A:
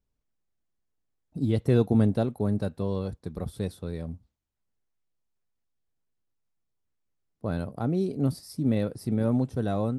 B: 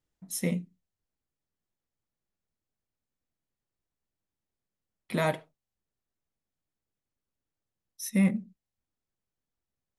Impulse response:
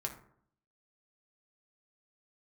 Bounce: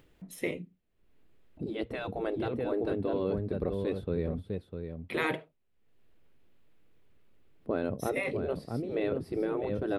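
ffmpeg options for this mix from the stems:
-filter_complex "[0:a]highshelf=frequency=6300:gain=-10,adelay=250,volume=2dB,asplit=2[link_01][link_02];[link_02]volume=-8.5dB[link_03];[1:a]deesser=0.6,volume=2dB[link_04];[link_03]aecho=0:1:652:1[link_05];[link_01][link_04][link_05]amix=inputs=3:normalize=0,afftfilt=real='re*lt(hypot(re,im),0.251)':imag='im*lt(hypot(re,im),0.251)':win_size=1024:overlap=0.75,firequalizer=gain_entry='entry(170,0);entry(410,5);entry(810,-3);entry(2600,2);entry(5700,-13);entry(12000,-9)':delay=0.05:min_phase=1,acompressor=mode=upward:threshold=-47dB:ratio=2.5"

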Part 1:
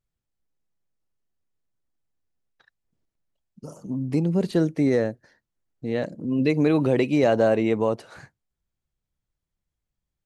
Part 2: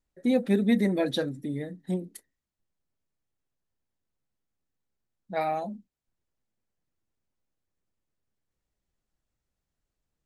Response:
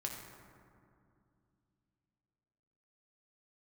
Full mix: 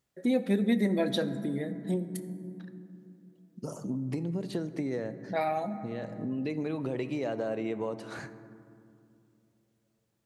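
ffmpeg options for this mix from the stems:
-filter_complex "[0:a]acompressor=threshold=-30dB:ratio=6,volume=1.5dB,asplit=2[link_01][link_02];[link_02]volume=-7dB[link_03];[1:a]volume=2dB,asplit=3[link_04][link_05][link_06];[link_05]volume=-6dB[link_07];[link_06]apad=whole_len=452217[link_08];[link_01][link_08]sidechaincompress=threshold=-37dB:ratio=8:attack=16:release=893[link_09];[2:a]atrim=start_sample=2205[link_10];[link_03][link_07]amix=inputs=2:normalize=0[link_11];[link_11][link_10]afir=irnorm=-1:irlink=0[link_12];[link_09][link_04][link_12]amix=inputs=3:normalize=0,highpass=120,acompressor=threshold=-36dB:ratio=1.5"

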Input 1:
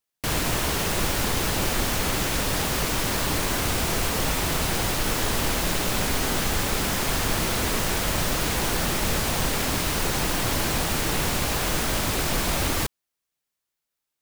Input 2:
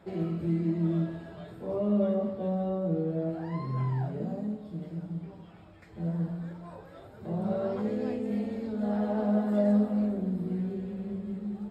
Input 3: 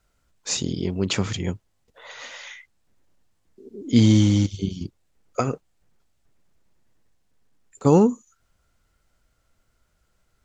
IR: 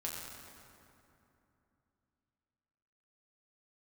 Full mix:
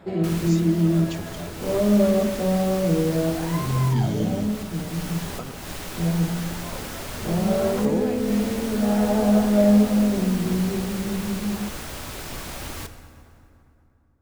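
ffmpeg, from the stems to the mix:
-filter_complex "[0:a]volume=-12.5dB,asplit=2[link_01][link_02];[link_02]volume=-5.5dB[link_03];[1:a]acontrast=61,volume=2dB[link_04];[2:a]volume=-13.5dB,asplit=2[link_05][link_06];[link_06]apad=whole_len=626897[link_07];[link_01][link_07]sidechaincompress=threshold=-45dB:ratio=8:attack=7:release=201[link_08];[3:a]atrim=start_sample=2205[link_09];[link_03][link_09]afir=irnorm=-1:irlink=0[link_10];[link_08][link_04][link_05][link_10]amix=inputs=4:normalize=0"

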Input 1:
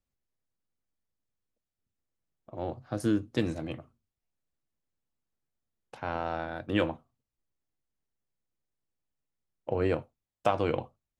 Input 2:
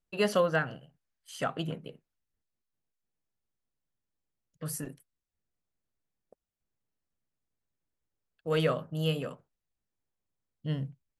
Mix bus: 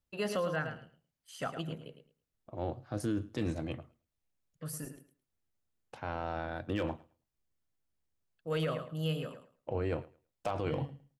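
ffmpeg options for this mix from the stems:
ffmpeg -i stem1.wav -i stem2.wav -filter_complex "[0:a]asoftclip=type=hard:threshold=-16dB,volume=-2dB,asplit=2[link_01][link_02];[link_02]volume=-24dB[link_03];[1:a]volume=-5dB,asplit=2[link_04][link_05];[link_05]volume=-10dB[link_06];[link_03][link_06]amix=inputs=2:normalize=0,aecho=0:1:108|216|324:1|0.18|0.0324[link_07];[link_01][link_04][link_07]amix=inputs=3:normalize=0,equalizer=frequency=78:width=1.3:gain=4,alimiter=level_in=0.5dB:limit=-24dB:level=0:latency=1:release=17,volume=-0.5dB" out.wav

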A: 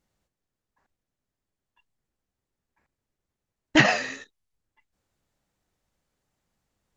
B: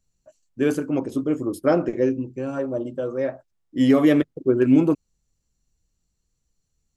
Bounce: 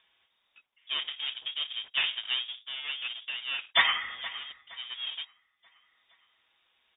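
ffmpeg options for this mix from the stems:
ffmpeg -i stem1.wav -i stem2.wav -filter_complex "[0:a]aecho=1:1:6.7:0.6,volume=-4.5dB,asplit=3[link_01][link_02][link_03];[link_02]volume=-16.5dB[link_04];[1:a]dynaudnorm=framelen=220:gausssize=7:maxgain=3.5dB,aeval=exprs='abs(val(0))':channel_layout=same,adelay=300,volume=-5dB[link_05];[link_03]apad=whole_len=320571[link_06];[link_05][link_06]sidechaincompress=threshold=-38dB:ratio=4:attack=16:release=1480[link_07];[link_04]aecho=0:1:468|936|1404|1872|2340:1|0.34|0.116|0.0393|0.0134[link_08];[link_01][link_07][link_08]amix=inputs=3:normalize=0,highpass=frequency=540:poles=1,acompressor=mode=upward:threshold=-52dB:ratio=2.5,lowpass=frequency=3200:width_type=q:width=0.5098,lowpass=frequency=3200:width_type=q:width=0.6013,lowpass=frequency=3200:width_type=q:width=0.9,lowpass=frequency=3200:width_type=q:width=2.563,afreqshift=-3800" out.wav

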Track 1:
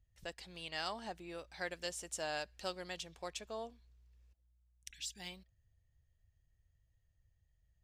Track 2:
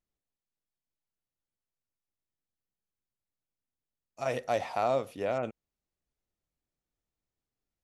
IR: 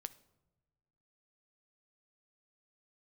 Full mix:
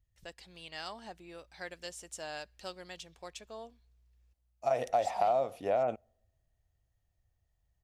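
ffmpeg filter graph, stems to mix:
-filter_complex "[0:a]volume=-2.5dB,asplit=2[link_01][link_02];[link_02]volume=-22.5dB[link_03];[1:a]equalizer=frequency=710:width_type=o:width=0.66:gain=12,adelay=450,volume=-3.5dB,asplit=2[link_04][link_05];[link_05]volume=-19dB[link_06];[2:a]atrim=start_sample=2205[link_07];[link_03][link_06]amix=inputs=2:normalize=0[link_08];[link_08][link_07]afir=irnorm=-1:irlink=0[link_09];[link_01][link_04][link_09]amix=inputs=3:normalize=0,acompressor=threshold=-25dB:ratio=6"

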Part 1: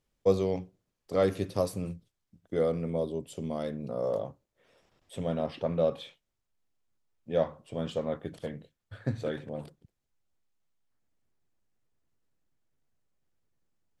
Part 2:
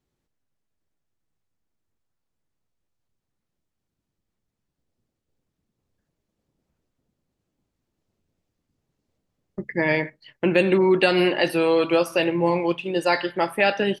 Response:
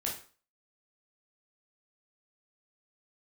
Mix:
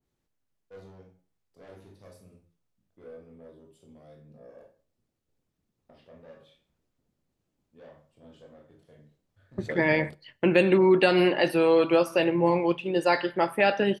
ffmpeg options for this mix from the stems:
-filter_complex "[0:a]asoftclip=type=tanh:threshold=-26.5dB,adelay=450,volume=0.5dB,asplit=3[link_01][link_02][link_03];[link_01]atrim=end=4.63,asetpts=PTS-STARTPTS,afade=type=out:start_time=4.626:duration=0.004:curve=hsin[link_04];[link_02]atrim=start=4.63:end=5.89,asetpts=PTS-STARTPTS,volume=0[link_05];[link_03]atrim=start=5.89,asetpts=PTS-STARTPTS,afade=type=in:duration=0.004:curve=hsin[link_06];[link_04][link_05][link_06]concat=n=3:v=0:a=1,asplit=2[link_07][link_08];[link_08]volume=-21.5dB[link_09];[1:a]volume=-2dB,asplit=3[link_10][link_11][link_12];[link_11]volume=-23dB[link_13];[link_12]apad=whole_len=637245[link_14];[link_07][link_14]sidechaingate=range=-33dB:threshold=-38dB:ratio=16:detection=peak[link_15];[2:a]atrim=start_sample=2205[link_16];[link_09][link_13]amix=inputs=2:normalize=0[link_17];[link_17][link_16]afir=irnorm=-1:irlink=0[link_18];[link_15][link_10][link_18]amix=inputs=3:normalize=0,adynamicequalizer=threshold=0.0112:dfrequency=1800:dqfactor=0.7:tfrequency=1800:tqfactor=0.7:attack=5:release=100:ratio=0.375:range=2:mode=cutabove:tftype=highshelf"

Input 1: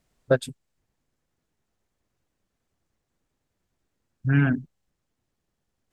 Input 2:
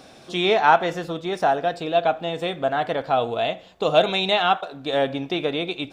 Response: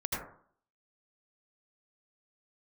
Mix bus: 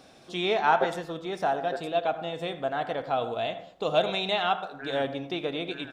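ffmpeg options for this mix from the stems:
-filter_complex "[0:a]highpass=frequency=370:width=0.5412,highpass=frequency=370:width=1.3066,tremolo=f=140:d=0.947,adelay=500,volume=-5.5dB,asplit=2[link_01][link_02];[link_02]volume=-5.5dB[link_03];[1:a]volume=-8dB,asplit=2[link_04][link_05];[link_05]volume=-15.5dB[link_06];[2:a]atrim=start_sample=2205[link_07];[link_06][link_07]afir=irnorm=-1:irlink=0[link_08];[link_03]aecho=0:1:910:1[link_09];[link_01][link_04][link_08][link_09]amix=inputs=4:normalize=0"

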